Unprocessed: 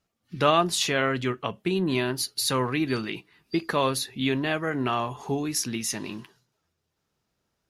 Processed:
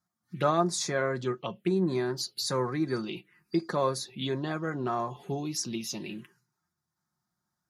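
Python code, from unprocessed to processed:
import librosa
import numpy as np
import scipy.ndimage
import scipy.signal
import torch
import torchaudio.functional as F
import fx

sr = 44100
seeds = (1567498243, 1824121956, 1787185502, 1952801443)

y = scipy.signal.sosfilt(scipy.signal.butter(2, 87.0, 'highpass', fs=sr, output='sos'), x)
y = y + 0.49 * np.pad(y, (int(5.6 * sr / 1000.0), 0))[:len(y)]
y = fx.env_phaser(y, sr, low_hz=470.0, high_hz=2900.0, full_db=-22.5)
y = y * 10.0 ** (-3.5 / 20.0)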